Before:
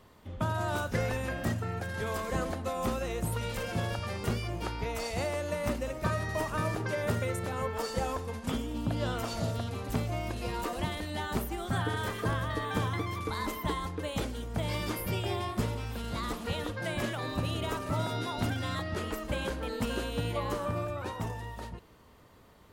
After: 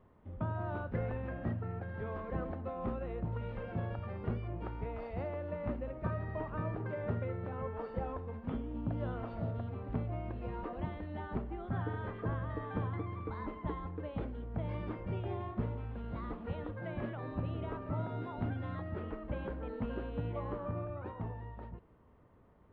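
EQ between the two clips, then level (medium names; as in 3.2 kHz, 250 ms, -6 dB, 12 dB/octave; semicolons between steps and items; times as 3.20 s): distance through air 440 m; tape spacing loss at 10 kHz 28 dB; -3.5 dB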